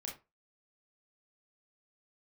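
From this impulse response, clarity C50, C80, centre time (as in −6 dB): 8.0 dB, 16.0 dB, 26 ms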